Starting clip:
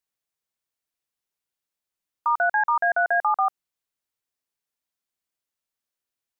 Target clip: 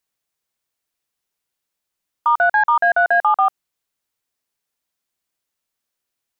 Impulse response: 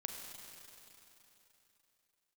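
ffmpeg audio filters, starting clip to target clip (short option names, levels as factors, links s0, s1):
-af "acontrast=68"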